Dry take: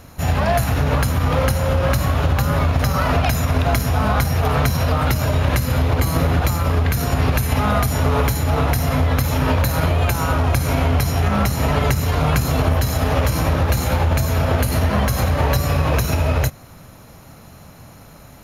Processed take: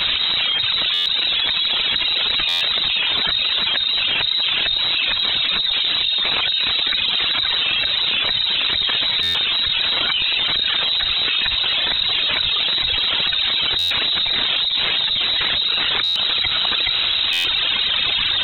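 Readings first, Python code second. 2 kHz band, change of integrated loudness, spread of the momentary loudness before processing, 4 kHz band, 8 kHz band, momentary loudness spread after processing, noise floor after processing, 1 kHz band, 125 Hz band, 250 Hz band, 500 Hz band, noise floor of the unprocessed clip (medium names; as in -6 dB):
+4.0 dB, +2.5 dB, 1 LU, +18.5 dB, under -15 dB, 0 LU, -21 dBFS, -8.5 dB, -25.5 dB, -17.5 dB, -14.0 dB, -43 dBFS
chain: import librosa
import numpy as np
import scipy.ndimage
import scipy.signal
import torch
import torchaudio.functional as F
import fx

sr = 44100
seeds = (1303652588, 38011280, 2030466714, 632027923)

p1 = np.minimum(x, 2.0 * 10.0 ** (-9.5 / 20.0) - x)
p2 = fx.chorus_voices(p1, sr, voices=6, hz=1.4, base_ms=10, depth_ms=3.0, mix_pct=70)
p3 = (np.mod(10.0 ** (11.5 / 20.0) * p2 + 1.0, 2.0) - 1.0) / 10.0 ** (11.5 / 20.0)
p4 = p2 + F.gain(torch.from_numpy(p3), -3.0).numpy()
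p5 = scipy.signal.sosfilt(scipy.signal.butter(2, 120.0, 'highpass', fs=sr, output='sos'), p4)
p6 = p5 + fx.echo_single(p5, sr, ms=422, db=-9.5, dry=0)
p7 = fx.rev_spring(p6, sr, rt60_s=2.7, pass_ms=(35, 60), chirp_ms=55, drr_db=15.0)
p8 = fx.dereverb_blind(p7, sr, rt60_s=1.7)
p9 = fx.freq_invert(p8, sr, carrier_hz=3900)
p10 = fx.buffer_glitch(p9, sr, at_s=(0.93, 2.48, 9.22, 13.78, 16.03, 17.32), block=512, repeats=10)
p11 = fx.env_flatten(p10, sr, amount_pct=100)
y = F.gain(torch.from_numpy(p11), -6.0).numpy()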